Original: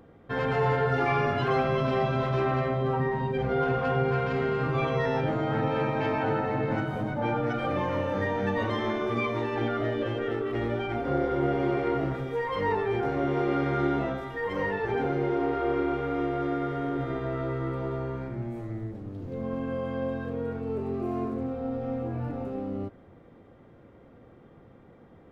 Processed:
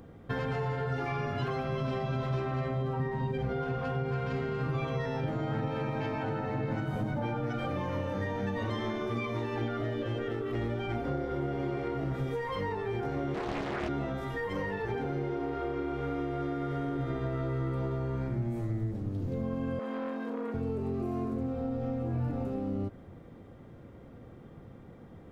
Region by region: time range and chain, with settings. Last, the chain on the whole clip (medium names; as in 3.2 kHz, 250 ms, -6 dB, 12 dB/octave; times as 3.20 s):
13.34–13.89 s: high-pass 260 Hz + loudspeaker Doppler distortion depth 0.79 ms
19.79–20.54 s: Chebyshev high-pass 210 Hz, order 8 + transformer saturation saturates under 810 Hz
whole clip: compression, threshold -32 dBFS; tone controls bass +6 dB, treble +7 dB